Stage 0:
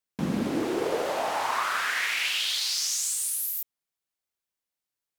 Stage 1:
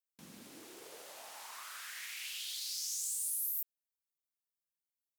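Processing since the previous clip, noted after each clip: pre-emphasis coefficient 0.9; gain -9 dB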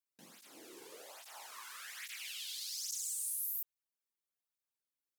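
tape flanging out of phase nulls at 1.2 Hz, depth 1.7 ms; gain +1 dB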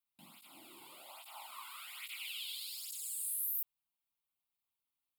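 fixed phaser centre 1700 Hz, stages 6; gain +3.5 dB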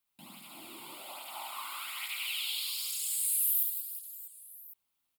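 reverse bouncing-ball echo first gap 70 ms, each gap 1.6×, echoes 5; gain +6.5 dB

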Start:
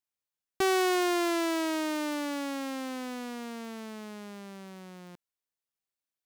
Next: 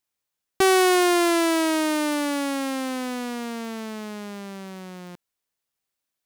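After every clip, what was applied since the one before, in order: dynamic EQ 9700 Hz, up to +6 dB, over -58 dBFS, Q 2.9; gain +8 dB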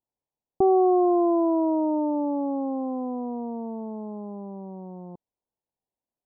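steep low-pass 1000 Hz 72 dB/oct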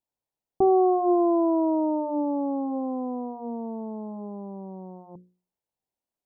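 notches 60/120/180/240/300/360/420/480/540 Hz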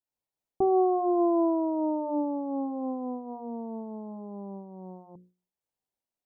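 noise-modulated level, depth 65%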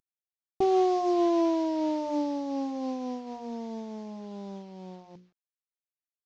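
CVSD 32 kbps

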